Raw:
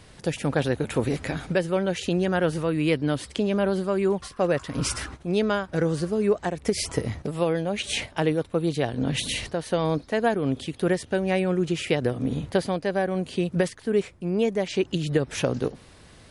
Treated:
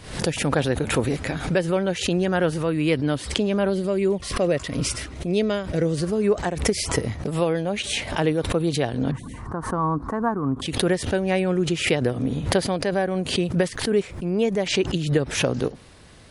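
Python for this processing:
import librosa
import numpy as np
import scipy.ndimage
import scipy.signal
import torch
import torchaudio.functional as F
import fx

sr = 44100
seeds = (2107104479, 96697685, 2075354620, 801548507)

y = fx.spec_box(x, sr, start_s=3.7, length_s=2.31, low_hz=720.0, high_hz=1800.0, gain_db=-7)
y = fx.curve_eq(y, sr, hz=(300.0, 580.0, 1100.0, 2600.0, 3900.0, 8200.0, 12000.0), db=(0, -11, 10, -26, -29, -17, -21), at=(9.11, 10.62))
y = fx.pre_swell(y, sr, db_per_s=91.0)
y = y * librosa.db_to_amplitude(1.5)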